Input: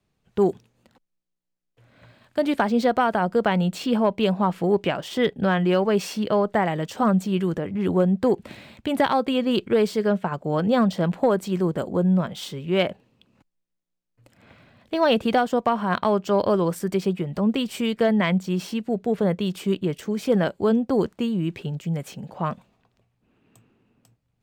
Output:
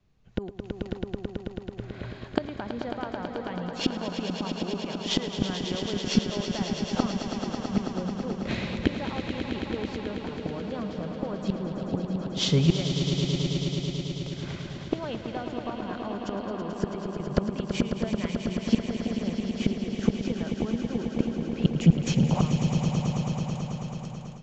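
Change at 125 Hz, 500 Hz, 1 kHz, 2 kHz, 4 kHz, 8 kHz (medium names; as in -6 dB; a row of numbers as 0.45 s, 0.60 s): +0.5 dB, -10.5 dB, -11.5 dB, -8.0 dB, +0.5 dB, +1.5 dB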